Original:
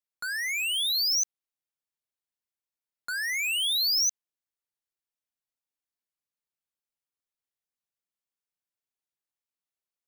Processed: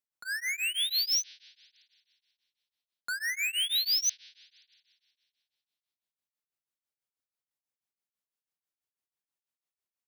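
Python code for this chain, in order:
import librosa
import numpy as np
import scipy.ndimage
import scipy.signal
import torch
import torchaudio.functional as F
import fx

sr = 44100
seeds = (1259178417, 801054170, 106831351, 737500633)

y = scipy.signal.sosfilt(scipy.signal.butter(4, 46.0, 'highpass', fs=sr, output='sos'), x)
y = fx.rev_spring(y, sr, rt60_s=2.3, pass_ms=(39,), chirp_ms=25, drr_db=12.5)
y = y * np.abs(np.cos(np.pi * 6.1 * np.arange(len(y)) / sr))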